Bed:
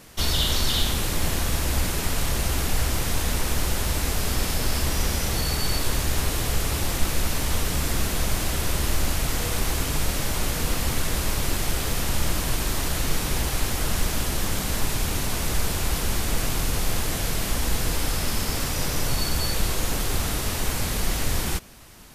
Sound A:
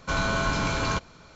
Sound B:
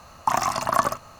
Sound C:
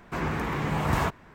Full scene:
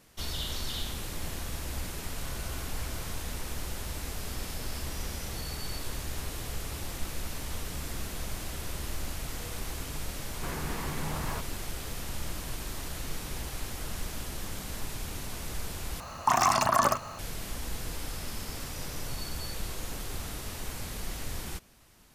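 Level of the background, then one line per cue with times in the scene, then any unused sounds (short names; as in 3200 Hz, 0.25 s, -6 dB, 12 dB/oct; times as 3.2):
bed -12 dB
2.16 add A -13.5 dB + compressor, threshold -32 dBFS
10.31 add C -1 dB + compressor 3:1, threshold -35 dBFS
16 replace with B -11.5 dB + maximiser +17 dB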